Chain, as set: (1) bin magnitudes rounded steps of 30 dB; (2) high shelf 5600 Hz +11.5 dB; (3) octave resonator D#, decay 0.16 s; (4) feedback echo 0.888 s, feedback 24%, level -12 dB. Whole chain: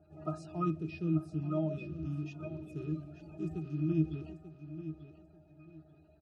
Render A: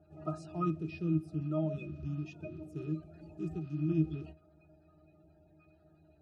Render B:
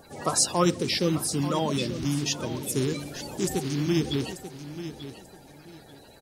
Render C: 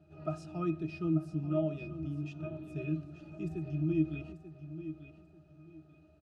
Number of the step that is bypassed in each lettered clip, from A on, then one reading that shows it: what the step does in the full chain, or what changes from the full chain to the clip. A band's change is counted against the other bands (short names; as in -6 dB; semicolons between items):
4, momentary loudness spread change -6 LU; 3, 125 Hz band -7.5 dB; 1, 1 kHz band -4.5 dB